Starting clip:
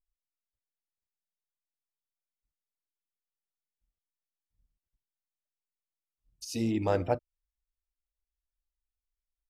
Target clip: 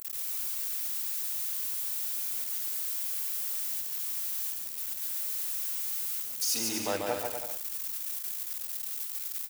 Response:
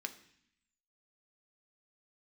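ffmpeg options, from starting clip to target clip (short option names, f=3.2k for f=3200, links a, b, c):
-af "aeval=exprs='val(0)+0.5*0.0158*sgn(val(0))':c=same,highpass=f=940:p=1,aemphasis=mode=production:type=50kf,aecho=1:1:140|245|323.8|382.8|427.1:0.631|0.398|0.251|0.158|0.1"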